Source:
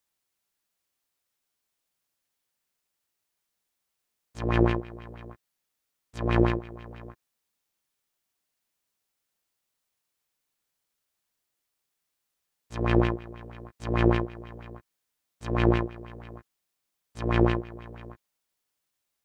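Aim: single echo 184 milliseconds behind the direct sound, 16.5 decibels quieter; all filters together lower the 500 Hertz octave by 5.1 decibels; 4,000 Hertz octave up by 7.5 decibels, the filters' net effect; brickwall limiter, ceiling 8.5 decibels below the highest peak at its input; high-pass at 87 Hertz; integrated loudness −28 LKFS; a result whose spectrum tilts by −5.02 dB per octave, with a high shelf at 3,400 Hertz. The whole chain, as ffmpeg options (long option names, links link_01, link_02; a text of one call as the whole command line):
ffmpeg -i in.wav -af "highpass=87,equalizer=frequency=500:width_type=o:gain=-8.5,highshelf=frequency=3400:gain=3.5,equalizer=frequency=4000:width_type=o:gain=8.5,alimiter=limit=-16dB:level=0:latency=1,aecho=1:1:184:0.15,volume=7dB" out.wav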